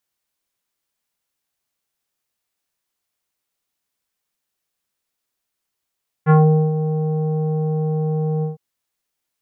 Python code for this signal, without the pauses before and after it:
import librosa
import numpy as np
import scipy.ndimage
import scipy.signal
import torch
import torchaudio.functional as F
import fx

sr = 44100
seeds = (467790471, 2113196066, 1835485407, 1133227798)

y = fx.sub_voice(sr, note=51, wave='square', cutoff_hz=650.0, q=1.4, env_oct=1.5, env_s=0.2, attack_ms=41.0, decay_s=0.42, sustain_db=-10.5, release_s=0.14, note_s=2.17, slope=24)